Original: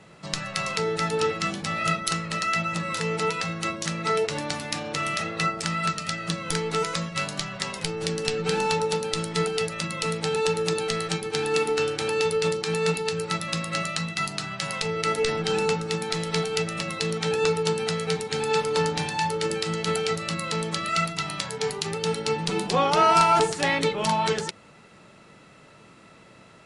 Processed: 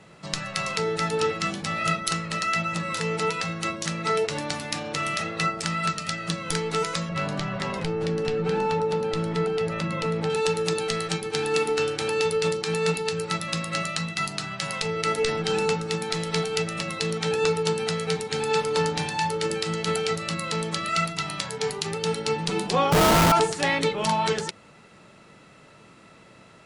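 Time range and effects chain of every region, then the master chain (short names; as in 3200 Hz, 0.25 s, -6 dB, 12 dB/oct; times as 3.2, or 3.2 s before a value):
7.09–10.3 LPF 1200 Hz 6 dB/oct + fast leveller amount 50%
22.92–23.32 RIAA curve playback + Schmitt trigger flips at -21 dBFS
whole clip: dry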